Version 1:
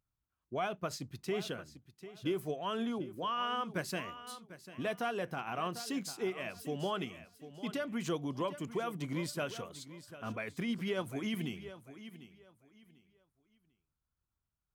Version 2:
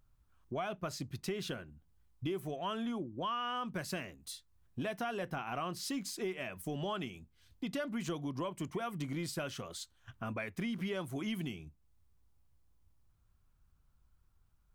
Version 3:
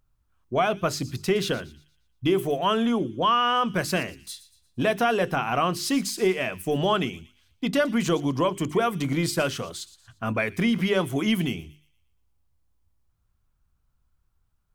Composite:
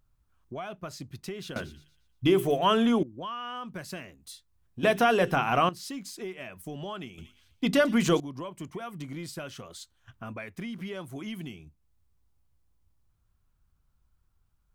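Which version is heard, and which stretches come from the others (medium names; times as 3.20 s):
2
1.56–3.03 s: from 3
4.83–5.69 s: from 3
7.18–8.20 s: from 3
not used: 1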